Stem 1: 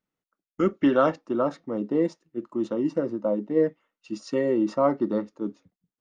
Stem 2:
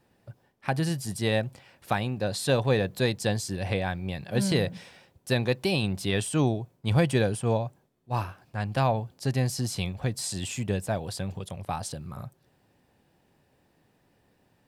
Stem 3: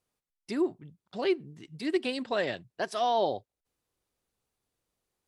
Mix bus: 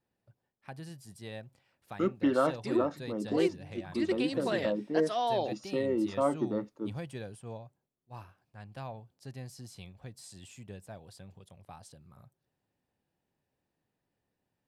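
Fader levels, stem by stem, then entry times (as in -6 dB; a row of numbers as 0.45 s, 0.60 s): -6.5 dB, -17.5 dB, -3.5 dB; 1.40 s, 0.00 s, 2.15 s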